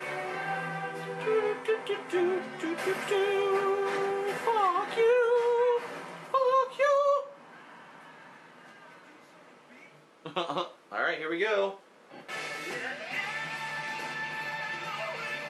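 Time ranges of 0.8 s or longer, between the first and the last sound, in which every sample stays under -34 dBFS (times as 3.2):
7.23–10.26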